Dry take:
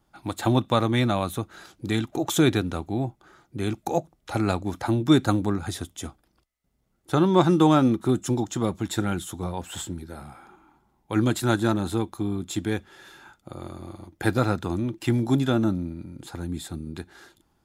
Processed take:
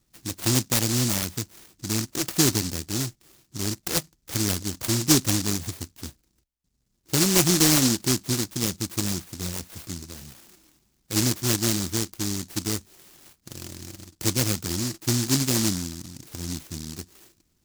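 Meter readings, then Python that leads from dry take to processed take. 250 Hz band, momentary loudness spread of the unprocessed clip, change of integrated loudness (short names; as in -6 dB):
-3.5 dB, 18 LU, +1.0 dB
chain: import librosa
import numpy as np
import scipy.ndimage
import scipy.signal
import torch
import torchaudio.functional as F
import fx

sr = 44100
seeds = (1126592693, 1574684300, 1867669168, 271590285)

y = fx.high_shelf(x, sr, hz=3300.0, db=-10.0)
y = fx.notch(y, sr, hz=7000.0, q=6.8)
y = fx.noise_mod_delay(y, sr, seeds[0], noise_hz=5800.0, depth_ms=0.42)
y = F.gain(torch.from_numpy(y), -1.0).numpy()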